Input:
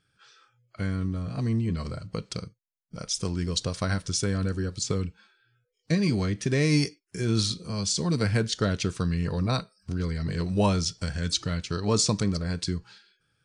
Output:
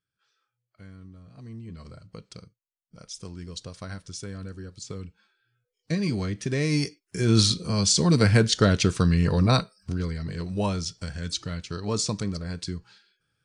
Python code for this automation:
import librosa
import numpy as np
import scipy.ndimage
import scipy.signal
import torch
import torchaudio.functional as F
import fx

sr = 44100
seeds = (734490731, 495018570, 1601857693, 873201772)

y = fx.gain(x, sr, db=fx.line((1.31, -17.0), (1.92, -10.0), (4.8, -10.0), (6.0, -2.0), (6.77, -2.0), (7.39, 6.0), (9.6, 6.0), (10.3, -3.5)))